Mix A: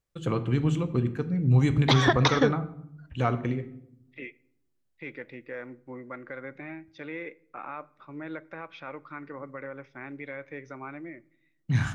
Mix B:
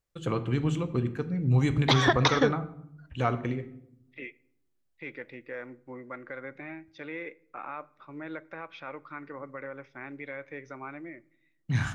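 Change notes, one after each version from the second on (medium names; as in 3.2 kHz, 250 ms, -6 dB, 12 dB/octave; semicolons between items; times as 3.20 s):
master: add peaking EQ 160 Hz -3 dB 2.2 oct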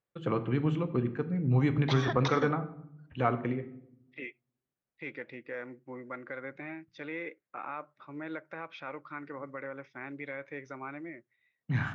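first voice: add band-pass 130–2400 Hz; second voice: send off; background -11.0 dB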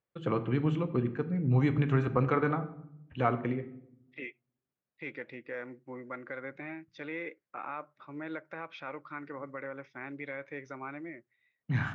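background: muted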